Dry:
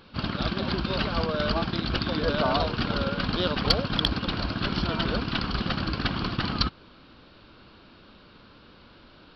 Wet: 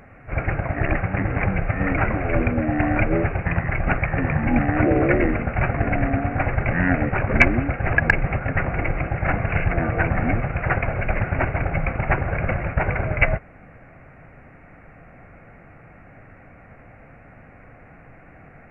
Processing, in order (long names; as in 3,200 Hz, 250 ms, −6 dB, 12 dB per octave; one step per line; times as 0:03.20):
wrong playback speed 15 ips tape played at 7.5 ips
level +6 dB